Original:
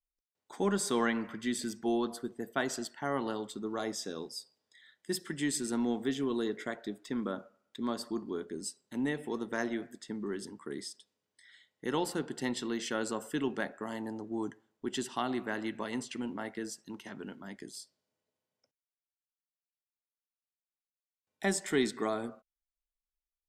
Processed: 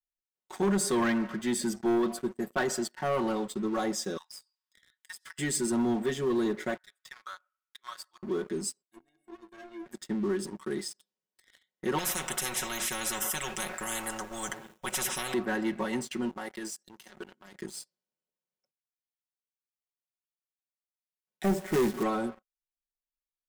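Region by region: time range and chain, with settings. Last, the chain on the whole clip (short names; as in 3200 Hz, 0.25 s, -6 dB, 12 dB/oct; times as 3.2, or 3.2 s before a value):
4.17–5.39 steep high-pass 870 Hz 72 dB/oct + compressor 10:1, threshold -45 dBFS
6.77–8.23 HPF 1300 Hz 24 dB/oct + tilt -2 dB/oct
8.82–9.86 compressor 3:1, threshold -38 dBFS + metallic resonator 330 Hz, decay 0.22 s, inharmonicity 0.03
11.98–15.34 Butterworth band-stop 4500 Hz, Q 3.1 + spectral compressor 10:1
16.29–17.55 tone controls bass -9 dB, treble +9 dB + level quantiser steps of 11 dB
21.44–22.03 LPF 1400 Hz 6 dB/oct + tilt -1.5 dB/oct + companded quantiser 4-bit
whole clip: comb 5.4 ms, depth 88%; dynamic EQ 3700 Hz, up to -5 dB, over -51 dBFS, Q 0.92; sample leveller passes 3; gain -7 dB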